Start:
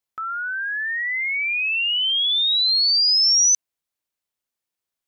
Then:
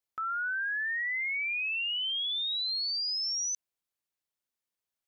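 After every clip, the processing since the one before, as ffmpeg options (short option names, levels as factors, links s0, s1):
-af "alimiter=limit=0.0631:level=0:latency=1:release=26,volume=0.562"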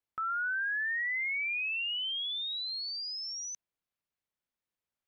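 -af "bass=f=250:g=4,treble=f=4000:g=-9"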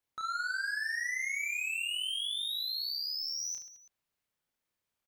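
-filter_complex "[0:a]asoftclip=type=tanh:threshold=0.0119,asplit=2[s0][s1];[s1]aecho=0:1:30|72|130.8|213.1|328.4:0.631|0.398|0.251|0.158|0.1[s2];[s0][s2]amix=inputs=2:normalize=0,volume=1.41"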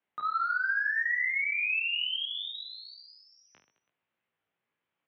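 -af "highpass=f=190:t=q:w=0.5412,highpass=f=190:t=q:w=1.307,lowpass=f=3200:t=q:w=0.5176,lowpass=f=3200:t=q:w=0.7071,lowpass=f=3200:t=q:w=1.932,afreqshift=-70,flanger=delay=16.5:depth=2.5:speed=2.6,volume=2.66"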